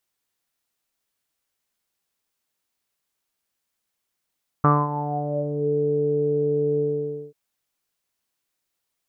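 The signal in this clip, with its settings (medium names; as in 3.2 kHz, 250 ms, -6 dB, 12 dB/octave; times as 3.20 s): synth note saw D3 24 dB/octave, low-pass 440 Hz, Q 8.4, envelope 1.5 oct, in 1.02 s, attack 3.2 ms, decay 0.23 s, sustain -12.5 dB, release 0.54 s, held 2.15 s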